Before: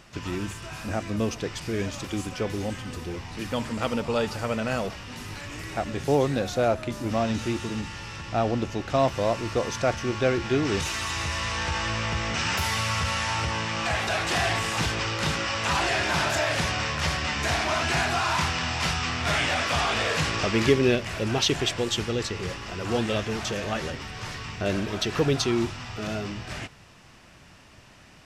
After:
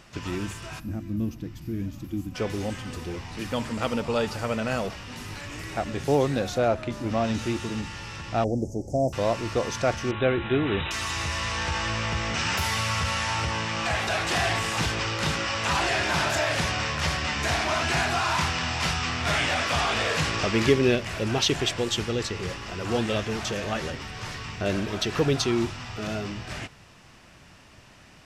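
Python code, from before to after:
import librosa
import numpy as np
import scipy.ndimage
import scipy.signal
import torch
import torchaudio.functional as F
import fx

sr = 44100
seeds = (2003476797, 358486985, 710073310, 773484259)

y = fx.spec_box(x, sr, start_s=0.8, length_s=1.55, low_hz=350.0, high_hz=11000.0, gain_db=-16)
y = fx.high_shelf(y, sr, hz=8300.0, db=-11.0, at=(6.58, 7.24))
y = fx.cheby2_bandstop(y, sr, low_hz=1100.0, high_hz=3900.0, order=4, stop_db=40, at=(8.44, 9.13))
y = fx.brickwall_lowpass(y, sr, high_hz=4000.0, at=(10.11, 10.91))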